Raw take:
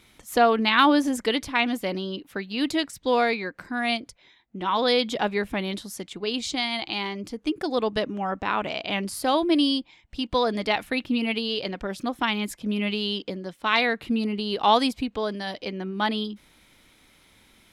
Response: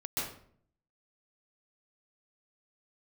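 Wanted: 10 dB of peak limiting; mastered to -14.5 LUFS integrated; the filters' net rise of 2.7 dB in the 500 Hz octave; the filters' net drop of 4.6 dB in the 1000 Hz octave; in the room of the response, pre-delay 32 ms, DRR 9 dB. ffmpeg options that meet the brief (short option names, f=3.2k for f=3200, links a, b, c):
-filter_complex "[0:a]equalizer=f=500:t=o:g=5.5,equalizer=f=1k:t=o:g=-9,alimiter=limit=-17dB:level=0:latency=1,asplit=2[a][b];[1:a]atrim=start_sample=2205,adelay=32[c];[b][c]afir=irnorm=-1:irlink=0,volume=-13.5dB[d];[a][d]amix=inputs=2:normalize=0,volume=13dB"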